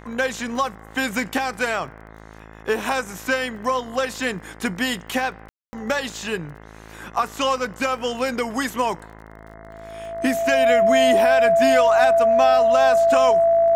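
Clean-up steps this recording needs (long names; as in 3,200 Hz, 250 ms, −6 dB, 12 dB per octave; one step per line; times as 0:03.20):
click removal
hum removal 54.1 Hz, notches 39
notch filter 670 Hz, Q 30
ambience match 0:05.49–0:05.73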